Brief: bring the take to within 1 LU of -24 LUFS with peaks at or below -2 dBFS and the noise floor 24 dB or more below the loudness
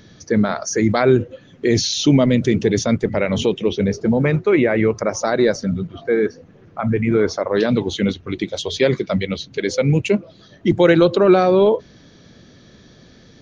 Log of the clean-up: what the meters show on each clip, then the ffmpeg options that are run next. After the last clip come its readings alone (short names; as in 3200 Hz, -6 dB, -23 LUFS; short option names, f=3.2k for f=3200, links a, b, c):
loudness -18.0 LUFS; peak -2.5 dBFS; loudness target -24.0 LUFS
-> -af "volume=-6dB"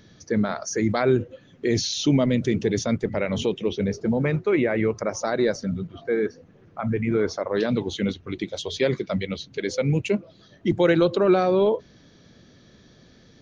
loudness -24.0 LUFS; peak -8.5 dBFS; noise floor -54 dBFS